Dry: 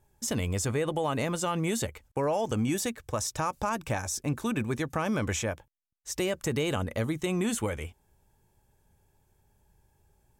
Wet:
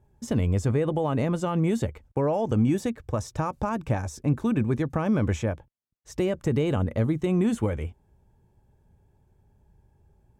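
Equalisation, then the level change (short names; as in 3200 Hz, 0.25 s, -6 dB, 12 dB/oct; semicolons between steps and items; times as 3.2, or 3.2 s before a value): HPF 130 Hz 6 dB/oct; tilt -3.5 dB/oct; 0.0 dB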